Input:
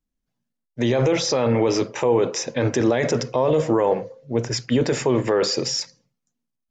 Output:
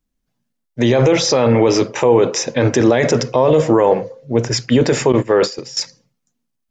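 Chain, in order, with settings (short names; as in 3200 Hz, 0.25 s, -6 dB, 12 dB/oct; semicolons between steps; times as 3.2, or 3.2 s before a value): 5.12–5.77 gate -20 dBFS, range -15 dB; gain +6.5 dB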